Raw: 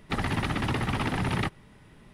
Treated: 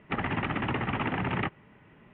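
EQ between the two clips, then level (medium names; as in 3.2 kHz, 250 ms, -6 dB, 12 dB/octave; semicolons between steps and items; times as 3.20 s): high-pass 150 Hz 6 dB/octave; steep low-pass 3 kHz 48 dB/octave; 0.0 dB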